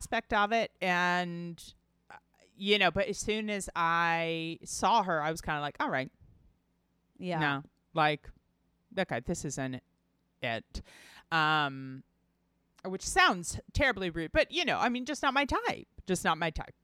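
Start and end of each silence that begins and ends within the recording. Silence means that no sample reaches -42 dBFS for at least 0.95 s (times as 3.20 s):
6.07–7.21 s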